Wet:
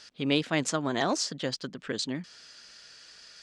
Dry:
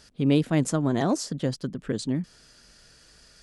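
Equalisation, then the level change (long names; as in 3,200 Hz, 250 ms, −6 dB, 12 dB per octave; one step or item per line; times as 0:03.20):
high-frequency loss of the air 160 metres
spectral tilt +4.5 dB per octave
+2.0 dB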